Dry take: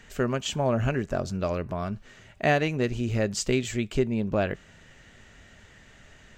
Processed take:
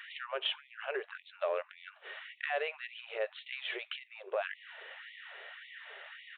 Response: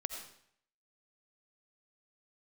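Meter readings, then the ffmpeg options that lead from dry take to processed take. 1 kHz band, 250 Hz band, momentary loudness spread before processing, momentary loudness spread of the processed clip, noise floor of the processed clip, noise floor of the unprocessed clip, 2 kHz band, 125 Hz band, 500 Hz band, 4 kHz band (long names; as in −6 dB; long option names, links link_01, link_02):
−10.0 dB, below −25 dB, 8 LU, 13 LU, −63 dBFS, −54 dBFS, −5.5 dB, below −40 dB, −10.5 dB, −2.5 dB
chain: -af "equalizer=frequency=68:width=2.3:gain=-13.5,alimiter=limit=-19dB:level=0:latency=1:release=24,acompressor=threshold=-34dB:ratio=6,asoftclip=type=tanh:threshold=-26dB,aresample=8000,aresample=44100,afftfilt=real='re*gte(b*sr/1024,360*pow(1900/360,0.5+0.5*sin(2*PI*1.8*pts/sr)))':imag='im*gte(b*sr/1024,360*pow(1900/360,0.5+0.5*sin(2*PI*1.8*pts/sr)))':win_size=1024:overlap=0.75,volume=7dB"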